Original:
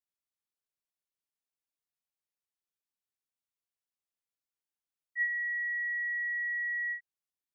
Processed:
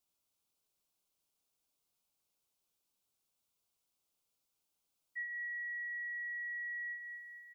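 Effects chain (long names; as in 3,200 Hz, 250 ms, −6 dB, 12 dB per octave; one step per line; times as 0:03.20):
parametric band 1,800 Hz −8 dB
notch filter 1,800 Hz, Q 5.7
on a send: repeating echo 227 ms, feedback 57%, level −12 dB
on the sum: downward compressor, threshold −50 dBFS, peak gain reduction 10.5 dB
level +10 dB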